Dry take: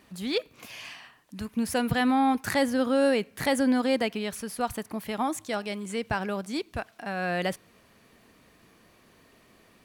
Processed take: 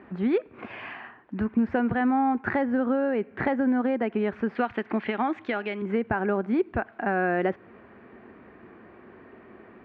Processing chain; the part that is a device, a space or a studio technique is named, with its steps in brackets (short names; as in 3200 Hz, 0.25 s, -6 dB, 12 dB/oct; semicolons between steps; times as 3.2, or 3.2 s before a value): 4.55–5.82 weighting filter D; bass amplifier (compressor 6:1, threshold -32 dBFS, peak gain reduction 13 dB; speaker cabinet 60–2100 Hz, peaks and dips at 150 Hz -5 dB, 230 Hz +5 dB, 370 Hz +10 dB, 790 Hz +4 dB, 1500 Hz +4 dB); gain +7 dB